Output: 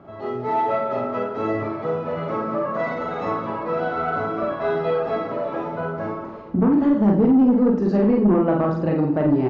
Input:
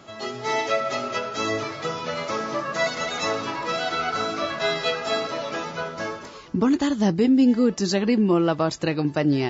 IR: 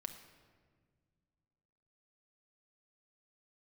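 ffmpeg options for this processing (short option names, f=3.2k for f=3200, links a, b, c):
-filter_complex "[0:a]lowpass=1k,asplit=2[a][b];[b]adelay=49,volume=-4.5dB[c];[a][c]amix=inputs=2:normalize=0,aecho=1:1:90:0.168,asplit=2[d][e];[1:a]atrim=start_sample=2205,adelay=39[f];[e][f]afir=irnorm=-1:irlink=0,volume=-1dB[g];[d][g]amix=inputs=2:normalize=0,asoftclip=type=tanh:threshold=-12.5dB,volume=2.5dB"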